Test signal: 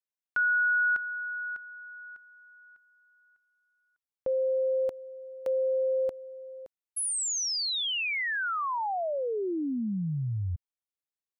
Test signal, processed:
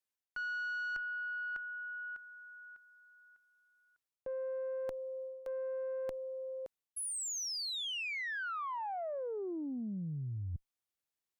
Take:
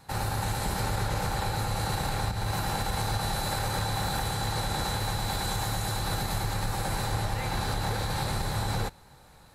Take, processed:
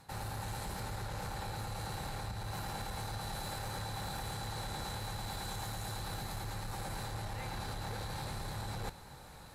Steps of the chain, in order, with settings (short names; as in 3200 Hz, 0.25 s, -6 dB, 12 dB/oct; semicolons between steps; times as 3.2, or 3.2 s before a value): tube stage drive 23 dB, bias 0.2; reverse; compressor 6:1, threshold -41 dBFS; reverse; gain +2.5 dB